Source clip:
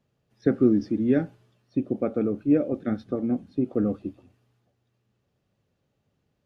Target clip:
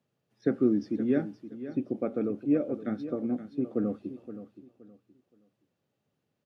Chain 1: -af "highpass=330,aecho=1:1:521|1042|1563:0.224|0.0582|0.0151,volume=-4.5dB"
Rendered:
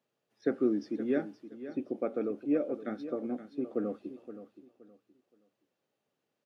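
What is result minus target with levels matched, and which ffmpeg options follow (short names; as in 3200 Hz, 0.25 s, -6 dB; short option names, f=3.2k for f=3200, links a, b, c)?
125 Hz band -6.5 dB
-af "highpass=140,aecho=1:1:521|1042|1563:0.224|0.0582|0.0151,volume=-4.5dB"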